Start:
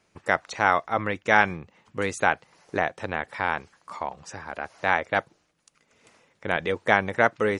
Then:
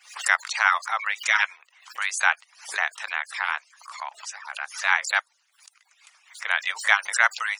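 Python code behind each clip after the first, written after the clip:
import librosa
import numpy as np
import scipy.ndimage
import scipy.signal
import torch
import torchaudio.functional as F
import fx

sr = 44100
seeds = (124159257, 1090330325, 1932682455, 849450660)

y = fx.hpss_only(x, sr, part='percussive')
y = scipy.signal.sosfilt(scipy.signal.bessel(6, 1500.0, 'highpass', norm='mag', fs=sr, output='sos'), y)
y = fx.pre_swell(y, sr, db_per_s=140.0)
y = F.gain(torch.from_numpy(y), 7.0).numpy()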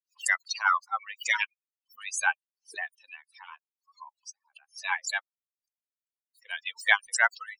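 y = fx.bin_expand(x, sr, power=3.0)
y = F.gain(torch.from_numpy(y), 2.0).numpy()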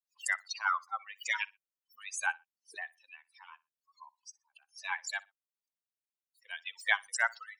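y = fx.echo_feedback(x, sr, ms=61, feedback_pct=23, wet_db=-23)
y = F.gain(torch.from_numpy(y), -6.5).numpy()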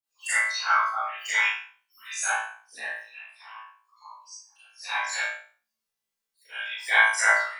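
y = fx.whisperise(x, sr, seeds[0])
y = fx.room_flutter(y, sr, wall_m=3.1, rt60_s=0.35)
y = fx.rev_schroeder(y, sr, rt60_s=0.38, comb_ms=28, drr_db=-10.0)
y = F.gain(torch.from_numpy(y), -4.0).numpy()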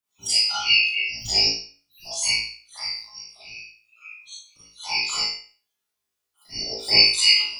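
y = fx.band_shuffle(x, sr, order='3142')
y = F.gain(torch.from_numpy(y), 4.0).numpy()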